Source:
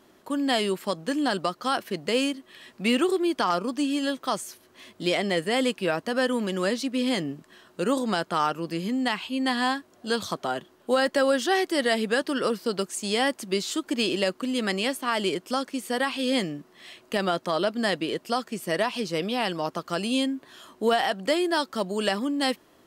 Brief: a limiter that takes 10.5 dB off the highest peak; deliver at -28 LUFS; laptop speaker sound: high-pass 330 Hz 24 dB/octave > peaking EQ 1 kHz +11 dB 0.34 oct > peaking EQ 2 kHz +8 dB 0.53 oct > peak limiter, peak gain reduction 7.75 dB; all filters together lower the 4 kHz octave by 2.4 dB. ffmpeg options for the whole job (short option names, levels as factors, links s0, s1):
-af "equalizer=f=4000:t=o:g=-5,alimiter=limit=0.075:level=0:latency=1,highpass=f=330:w=0.5412,highpass=f=330:w=1.3066,equalizer=f=1000:t=o:w=0.34:g=11,equalizer=f=2000:t=o:w=0.53:g=8,volume=1.88,alimiter=limit=0.133:level=0:latency=1"